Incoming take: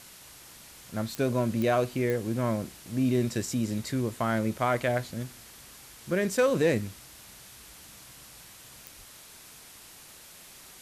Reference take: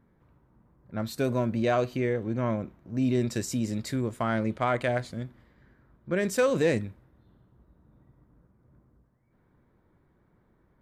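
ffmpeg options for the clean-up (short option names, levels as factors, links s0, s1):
-filter_complex "[0:a]adeclick=t=4,asplit=3[s0][s1][s2];[s0]afade=t=out:st=8.97:d=0.02[s3];[s1]highpass=f=140:w=0.5412,highpass=f=140:w=1.3066,afade=t=in:st=8.97:d=0.02,afade=t=out:st=9.09:d=0.02[s4];[s2]afade=t=in:st=9.09:d=0.02[s5];[s3][s4][s5]amix=inputs=3:normalize=0,afwtdn=0.004"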